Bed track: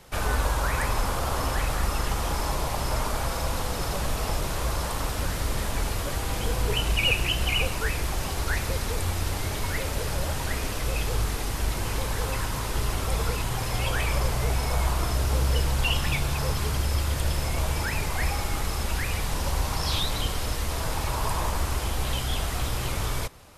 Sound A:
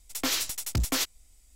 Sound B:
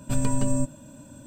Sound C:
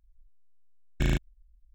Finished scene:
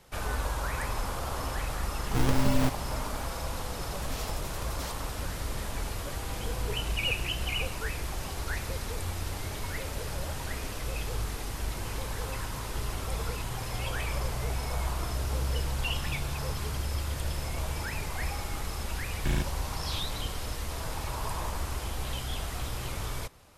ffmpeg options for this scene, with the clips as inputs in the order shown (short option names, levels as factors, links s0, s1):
-filter_complex "[0:a]volume=0.473[s0];[2:a]acrusher=samples=42:mix=1:aa=0.000001:lfo=1:lforange=67.2:lforate=1.6[s1];[3:a]alimiter=limit=0.126:level=0:latency=1:release=71[s2];[s1]atrim=end=1.26,asetpts=PTS-STARTPTS,volume=0.841,afade=t=in:d=0.004:c=hsin,afade=t=out:st=1.256:d=0.004:c=hsin,adelay=2040[s3];[1:a]atrim=end=1.55,asetpts=PTS-STARTPTS,volume=0.168,afade=t=in:d=0.004:c=hsin,afade=t=out:st=1.546:d=0.004:c=hsin,adelay=3870[s4];[s2]atrim=end=1.74,asetpts=PTS-STARTPTS,volume=0.891,afade=t=in:d=0.004:c=hsin,afade=t=out:st=1.736:d=0.004:c=hsin,adelay=18250[s5];[s0][s3][s4][s5]amix=inputs=4:normalize=0"